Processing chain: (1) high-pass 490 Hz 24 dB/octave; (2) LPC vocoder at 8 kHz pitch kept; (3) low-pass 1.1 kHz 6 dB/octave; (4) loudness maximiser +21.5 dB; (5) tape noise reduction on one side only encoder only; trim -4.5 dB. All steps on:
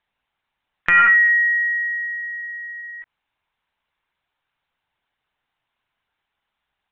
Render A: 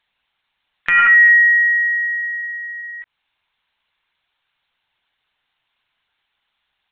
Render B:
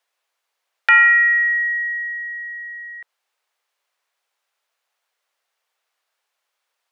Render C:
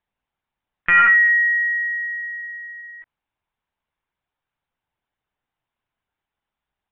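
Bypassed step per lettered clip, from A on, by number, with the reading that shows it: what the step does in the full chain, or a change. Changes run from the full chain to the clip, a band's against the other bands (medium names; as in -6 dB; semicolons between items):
3, loudness change +4.0 LU; 2, crest factor change -1.5 dB; 5, crest factor change -4.0 dB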